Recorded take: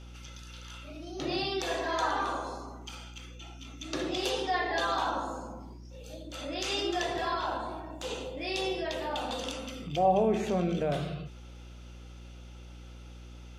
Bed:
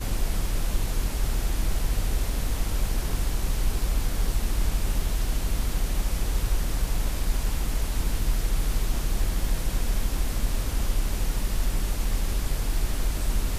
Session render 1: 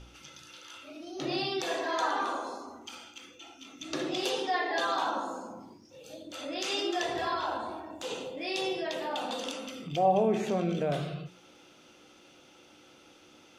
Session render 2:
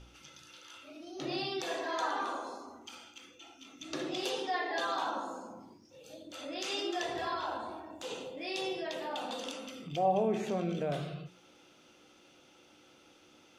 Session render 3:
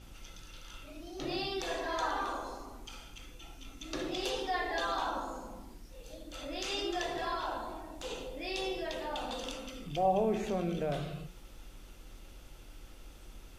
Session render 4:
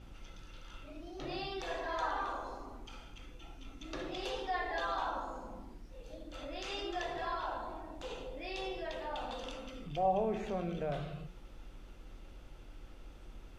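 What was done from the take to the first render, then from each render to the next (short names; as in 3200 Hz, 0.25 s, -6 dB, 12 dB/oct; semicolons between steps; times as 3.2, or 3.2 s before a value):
de-hum 60 Hz, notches 4
gain -4 dB
add bed -26 dB
dynamic EQ 280 Hz, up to -6 dB, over -47 dBFS, Q 0.85; LPF 2100 Hz 6 dB/oct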